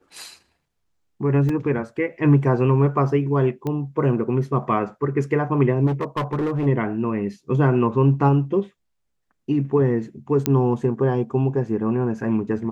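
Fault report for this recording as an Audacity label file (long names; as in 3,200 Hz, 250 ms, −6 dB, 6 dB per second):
1.490000	1.490000	drop-out 3.5 ms
3.670000	3.670000	click −16 dBFS
5.860000	6.670000	clipping −19.5 dBFS
10.460000	10.460000	click −3 dBFS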